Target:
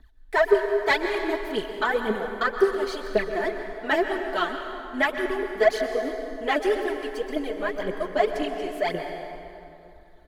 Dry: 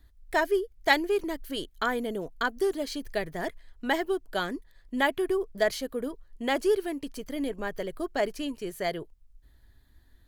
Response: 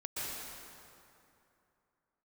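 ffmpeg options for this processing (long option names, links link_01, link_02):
-filter_complex "[0:a]aphaser=in_gain=1:out_gain=1:delay=3.5:decay=0.78:speed=1.9:type=triangular,aecho=1:1:4.6:0.39,asplit=2[link_01][link_02];[link_02]highpass=frequency=720:poles=1,volume=14dB,asoftclip=type=tanh:threshold=-2.5dB[link_03];[link_01][link_03]amix=inputs=2:normalize=0,lowpass=frequency=1500:poles=1,volume=-6dB,asplit=2[link_04][link_05];[1:a]atrim=start_sample=2205[link_06];[link_05][link_06]afir=irnorm=-1:irlink=0,volume=-6dB[link_07];[link_04][link_07]amix=inputs=2:normalize=0,volume=-6dB"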